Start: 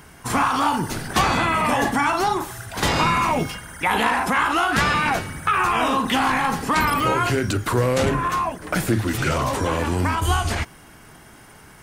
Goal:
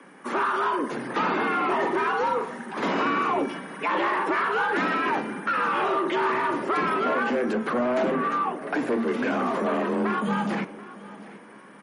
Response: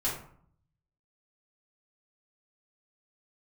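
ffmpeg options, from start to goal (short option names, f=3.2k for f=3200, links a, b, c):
-filter_complex "[0:a]acrossover=split=9200[a][b];[b]acompressor=threshold=-49dB:ratio=4:attack=1:release=60[c];[a][c]amix=inputs=2:normalize=0,afreqshift=120,acrossover=split=620|7200[d][e][f];[d]dynaudnorm=f=300:g=7:m=3.5dB[g];[g][e][f]amix=inputs=3:normalize=0,asoftclip=type=tanh:threshold=-17.5dB,aexciter=amount=11.4:drive=4.8:freq=11k,acrossover=split=180 2500:gain=0.141 1 0.178[h][i][j];[h][i][j]amix=inputs=3:normalize=0,aecho=1:1:732|1464|2196:0.126|0.0441|0.0154,asplit=2[k][l];[1:a]atrim=start_sample=2205,adelay=28[m];[l][m]afir=irnorm=-1:irlink=0,volume=-22dB[n];[k][n]amix=inputs=2:normalize=0,volume=-1dB" -ar 44100 -c:a libmp3lame -b:a 40k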